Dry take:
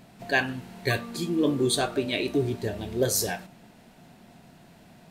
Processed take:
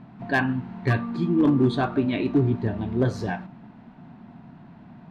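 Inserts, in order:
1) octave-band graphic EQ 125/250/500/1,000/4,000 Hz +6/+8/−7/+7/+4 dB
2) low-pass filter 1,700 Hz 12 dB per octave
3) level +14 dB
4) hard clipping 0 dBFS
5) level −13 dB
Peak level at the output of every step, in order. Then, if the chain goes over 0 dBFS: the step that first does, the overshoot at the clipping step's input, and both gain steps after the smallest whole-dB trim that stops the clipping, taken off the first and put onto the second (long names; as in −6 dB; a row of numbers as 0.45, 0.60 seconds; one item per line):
−7.0, −9.0, +5.0, 0.0, −13.0 dBFS
step 3, 5.0 dB
step 3 +9 dB, step 5 −8 dB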